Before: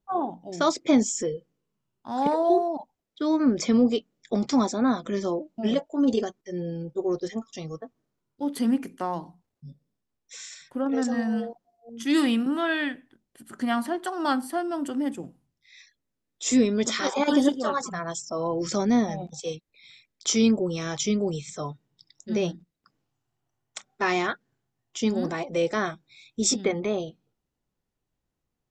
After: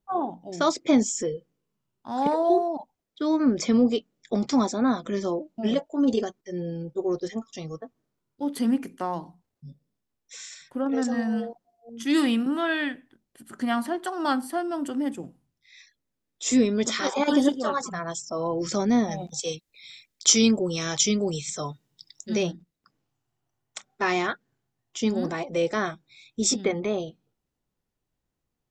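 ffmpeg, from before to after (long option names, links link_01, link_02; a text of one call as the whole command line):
ffmpeg -i in.wav -filter_complex "[0:a]asettb=1/sr,asplit=3[link_01][link_02][link_03];[link_01]atrim=end=19.114[link_04];[link_02]atrim=start=19.11:end=22.43,asetpts=PTS-STARTPTS,afade=type=in:duration=0.004:curve=qsin,afade=type=out:start_time=3.316:duration=0.004:curve=qsin,highshelf=frequency=2700:gain=9.5[link_05];[link_03]atrim=start=22.426[link_06];[link_04][link_05]acrossfade=duration=0.004:curve1=hsin:curve2=qsin[link_07];[link_07][link_06]acrossfade=duration=0.004:curve1=qsin:curve2=hsin" out.wav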